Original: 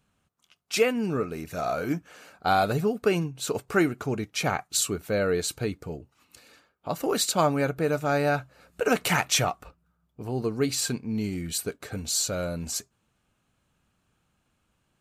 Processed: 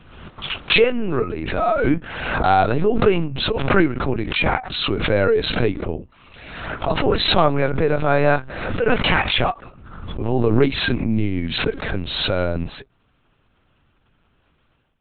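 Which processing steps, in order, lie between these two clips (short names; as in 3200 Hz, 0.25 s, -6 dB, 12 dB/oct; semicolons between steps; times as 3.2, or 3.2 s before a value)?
AGC gain up to 11.5 dB; LPC vocoder at 8 kHz pitch kept; backwards sustainer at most 46 dB/s; gain -1.5 dB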